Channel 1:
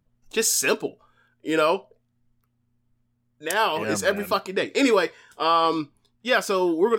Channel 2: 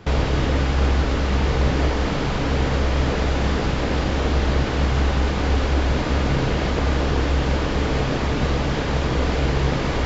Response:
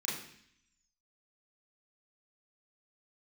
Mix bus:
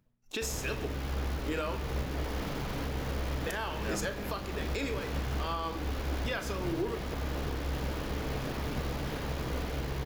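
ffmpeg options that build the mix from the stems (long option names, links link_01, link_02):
-filter_complex "[0:a]acompressor=threshold=-28dB:ratio=2.5,tremolo=f=2.5:d=0.63,volume=-0.5dB,asplit=2[link_01][link_02];[link_02]volume=-10.5dB[link_03];[1:a]acrusher=bits=6:dc=4:mix=0:aa=0.000001,adelay=350,volume=-13dB[link_04];[2:a]atrim=start_sample=2205[link_05];[link_03][link_05]afir=irnorm=-1:irlink=0[link_06];[link_01][link_04][link_06]amix=inputs=3:normalize=0,equalizer=frequency=8400:width=4:gain=-8,alimiter=limit=-23.5dB:level=0:latency=1:release=372"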